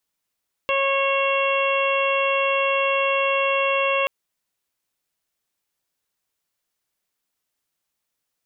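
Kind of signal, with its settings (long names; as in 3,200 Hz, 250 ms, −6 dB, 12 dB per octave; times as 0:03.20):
steady harmonic partials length 3.38 s, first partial 548 Hz, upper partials −2/−12.5/−7/−1.5/−11.5 dB, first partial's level −22 dB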